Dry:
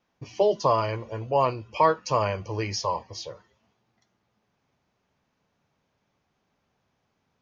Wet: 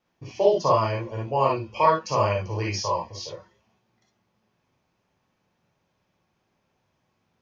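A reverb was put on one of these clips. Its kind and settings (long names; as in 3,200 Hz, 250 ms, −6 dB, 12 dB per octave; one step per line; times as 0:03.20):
reverb whose tail is shaped and stops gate 80 ms rising, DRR −2 dB
level −2.5 dB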